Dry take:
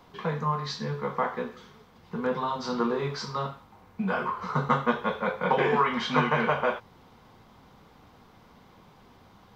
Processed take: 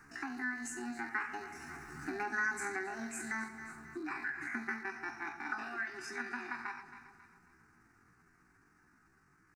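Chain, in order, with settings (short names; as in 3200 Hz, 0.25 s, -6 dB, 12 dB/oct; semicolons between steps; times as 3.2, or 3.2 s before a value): rattling part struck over -40 dBFS, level -34 dBFS; Doppler pass-by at 2.22, 6 m/s, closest 3.4 m; pitch shift +8.5 st; echo with dull and thin repeats by turns 0.135 s, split 880 Hz, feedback 61%, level -13 dB; compressor 2.5:1, threshold -49 dBFS, peak gain reduction 16.5 dB; bell 1500 Hz +3.5 dB 0.31 oct; fixed phaser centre 1400 Hz, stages 4; gain +10 dB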